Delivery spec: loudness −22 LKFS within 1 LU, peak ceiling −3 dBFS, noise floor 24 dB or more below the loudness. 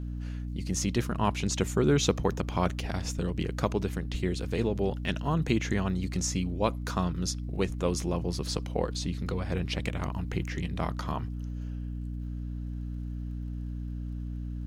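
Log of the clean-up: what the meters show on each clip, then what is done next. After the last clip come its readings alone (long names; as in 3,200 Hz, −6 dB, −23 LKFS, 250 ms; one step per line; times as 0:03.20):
crackle rate 39 per second; mains hum 60 Hz; hum harmonics up to 300 Hz; level of the hum −33 dBFS; integrated loudness −31.5 LKFS; sample peak −10.0 dBFS; target loudness −22.0 LKFS
→ click removal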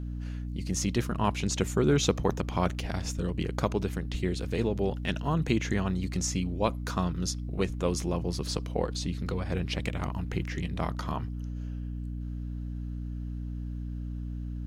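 crackle rate 0.27 per second; mains hum 60 Hz; hum harmonics up to 300 Hz; level of the hum −33 dBFS
→ hum removal 60 Hz, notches 5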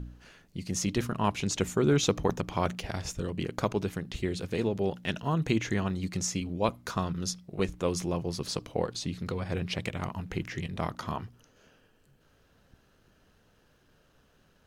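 mains hum none found; integrated loudness −31.5 LKFS; sample peak −11.0 dBFS; target loudness −22.0 LKFS
→ level +9.5 dB
brickwall limiter −3 dBFS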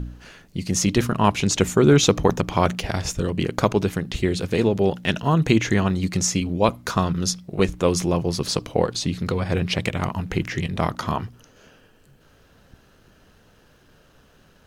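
integrated loudness −22.0 LKFS; sample peak −3.0 dBFS; background noise floor −56 dBFS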